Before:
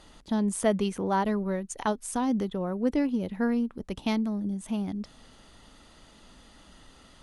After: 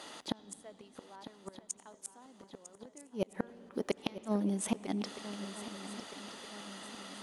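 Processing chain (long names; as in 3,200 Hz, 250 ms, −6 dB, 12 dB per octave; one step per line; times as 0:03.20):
high-pass filter 350 Hz 12 dB per octave
gate with flip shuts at −26 dBFS, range −34 dB
feedback echo with a long and a short gap by turns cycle 1,268 ms, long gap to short 3 to 1, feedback 46%, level −13 dB
on a send at −16.5 dB: convolution reverb RT60 5.3 s, pre-delay 71 ms
on the sum: level +8 dB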